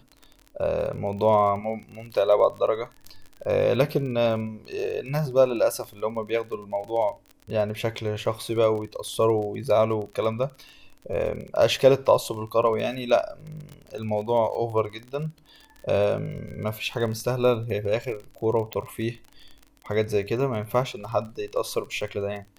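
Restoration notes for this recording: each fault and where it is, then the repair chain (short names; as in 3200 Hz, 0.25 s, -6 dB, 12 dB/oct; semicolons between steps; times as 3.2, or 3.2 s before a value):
crackle 33/s -33 dBFS
18.73 pop -14 dBFS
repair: de-click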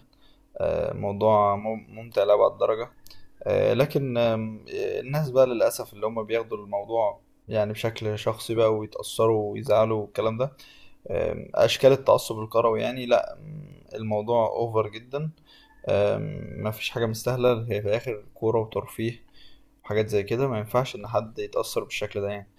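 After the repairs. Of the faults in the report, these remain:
none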